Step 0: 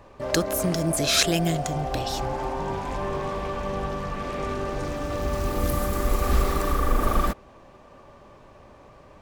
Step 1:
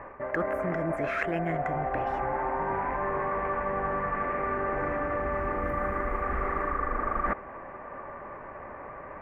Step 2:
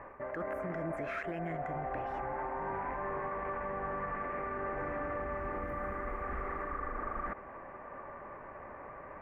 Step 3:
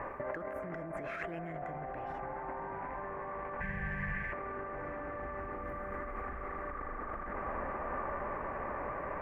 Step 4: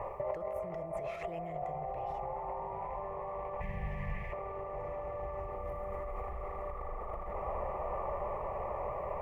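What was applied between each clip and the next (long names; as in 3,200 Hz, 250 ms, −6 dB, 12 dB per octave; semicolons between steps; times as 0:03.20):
drawn EQ curve 120 Hz 0 dB, 2,000 Hz +14 dB, 3,900 Hz −25 dB; reversed playback; downward compressor 6 to 1, threshold −27 dBFS, peak gain reduction 16 dB; reversed playback
brickwall limiter −23.5 dBFS, peak gain reduction 10 dB; level −5.5 dB
bucket-brigade delay 315 ms, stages 4,096, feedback 81%, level −16 dB; gain on a spectral selection 0:03.60–0:04.32, 200–1,500 Hz −17 dB; compressor whose output falls as the input rises −43 dBFS, ratio −1; level +3.5 dB
phaser with its sweep stopped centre 650 Hz, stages 4; level +4 dB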